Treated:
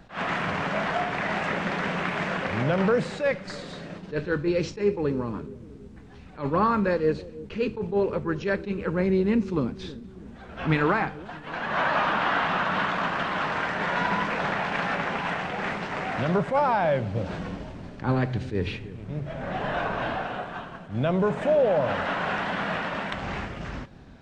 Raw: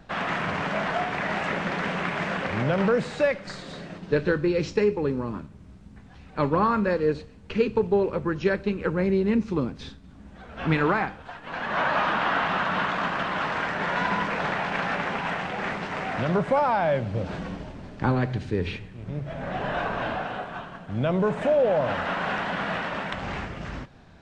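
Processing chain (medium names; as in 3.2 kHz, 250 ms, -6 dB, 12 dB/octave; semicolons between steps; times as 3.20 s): wow and flutter 32 cents; bucket-brigade echo 324 ms, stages 1024, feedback 50%, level -16 dB; attacks held to a fixed rise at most 200 dB/s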